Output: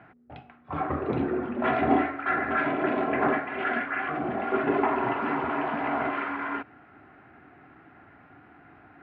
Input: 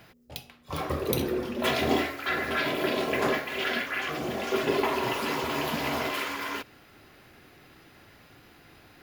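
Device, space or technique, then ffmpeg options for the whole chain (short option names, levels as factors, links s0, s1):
bass cabinet: -filter_complex "[0:a]asettb=1/sr,asplit=3[s0][s1][s2];[s0]atrim=end=5.504[s3];[s1]atrim=start=5.5:end=6,asetpts=PTS-STARTPTS,afade=t=in:d=0.004:c=qsin,afade=t=out:st=0.496:d=0.004:c=qsin,bass=f=250:g=-7,treble=f=4000:g=-1[s4];[s2]atrim=start=5.996[s5];[s3][s4]acrossfade=d=0.004:c1=hsin:c2=qsin[s6];[s6][s5]acrossfade=d=0.004:c1=qsin:c2=hsin,highpass=74,equalizer=f=280:t=q:w=4:g=6,equalizer=f=520:t=q:w=4:g=-6,equalizer=f=740:t=q:w=4:g=8,equalizer=f=1400:t=q:w=4:g=6,lowpass=f=2100:w=0.5412,lowpass=f=2100:w=1.3066"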